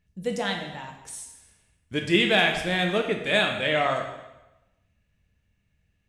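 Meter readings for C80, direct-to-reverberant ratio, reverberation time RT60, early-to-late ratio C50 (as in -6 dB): 8.5 dB, 2.5 dB, 1.0 s, 6.0 dB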